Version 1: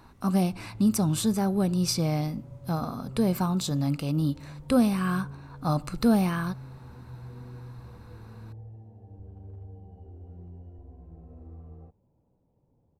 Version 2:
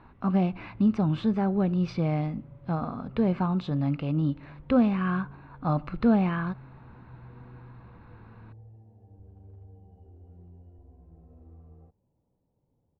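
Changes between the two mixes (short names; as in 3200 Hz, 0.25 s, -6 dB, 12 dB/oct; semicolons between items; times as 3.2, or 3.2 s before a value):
speech: add LPF 2900 Hz 24 dB/oct; background -5.5 dB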